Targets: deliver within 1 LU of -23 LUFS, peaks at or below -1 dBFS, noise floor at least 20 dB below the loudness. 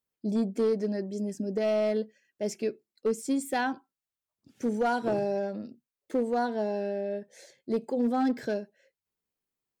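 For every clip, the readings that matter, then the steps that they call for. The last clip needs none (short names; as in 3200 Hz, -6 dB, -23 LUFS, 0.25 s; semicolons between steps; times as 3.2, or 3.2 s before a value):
clipped 0.7%; flat tops at -20.5 dBFS; loudness -30.5 LUFS; peak -20.5 dBFS; loudness target -23.0 LUFS
-> clip repair -20.5 dBFS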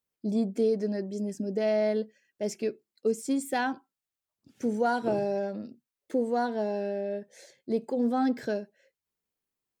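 clipped 0.0%; loudness -30.0 LUFS; peak -15.0 dBFS; loudness target -23.0 LUFS
-> gain +7 dB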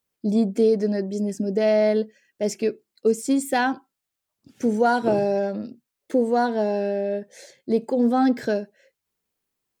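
loudness -23.0 LUFS; peak -8.0 dBFS; noise floor -83 dBFS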